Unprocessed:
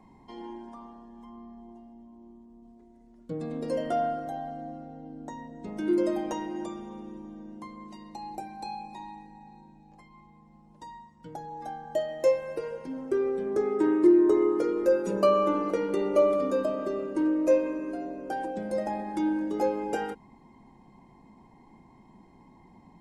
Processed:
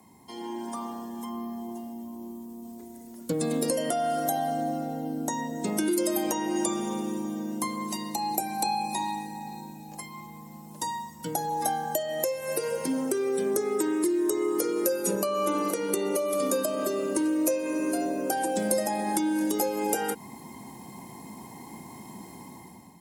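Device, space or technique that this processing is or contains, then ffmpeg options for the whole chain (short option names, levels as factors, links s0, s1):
FM broadcast chain: -filter_complex "[0:a]highpass=f=75:w=0.5412,highpass=f=75:w=1.3066,dynaudnorm=f=240:g=5:m=3.98,acrossover=split=130|2500[s0][s1][s2];[s0]acompressor=threshold=0.00158:ratio=4[s3];[s1]acompressor=threshold=0.0631:ratio=4[s4];[s2]acompressor=threshold=0.00501:ratio=4[s5];[s3][s4][s5]amix=inputs=3:normalize=0,aemphasis=mode=production:type=50fm,alimiter=limit=0.141:level=0:latency=1:release=254,asoftclip=type=hard:threshold=0.119,lowpass=f=15000:w=0.5412,lowpass=f=15000:w=1.3066,aemphasis=mode=production:type=50fm"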